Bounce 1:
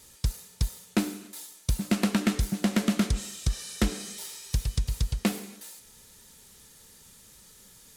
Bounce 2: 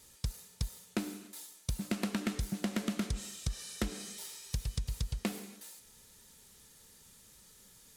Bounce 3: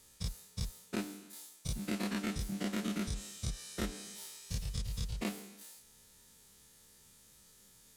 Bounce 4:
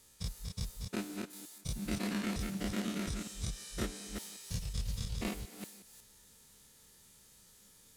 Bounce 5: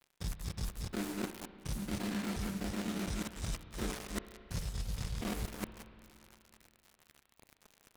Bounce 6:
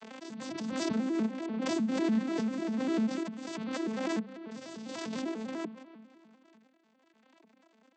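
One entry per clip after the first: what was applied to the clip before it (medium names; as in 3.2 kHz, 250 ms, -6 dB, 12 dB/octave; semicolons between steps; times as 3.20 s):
compression, threshold -24 dBFS, peak gain reduction 5.5 dB; trim -5.5 dB
every event in the spectrogram widened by 60 ms; trim -6.5 dB
chunks repeated in reverse 182 ms, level -4 dB; trim -1 dB
dead-time distortion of 0.23 ms; reverse; compression 6:1, threshold -47 dBFS, peak gain reduction 15.5 dB; reverse; spring tank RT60 2.6 s, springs 32/58 ms, chirp 30 ms, DRR 11 dB; trim +12 dB
vocoder on a broken chord minor triad, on A3, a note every 99 ms; hum notches 50/100/150/200 Hz; swell ahead of each attack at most 21 dB/s; trim +5 dB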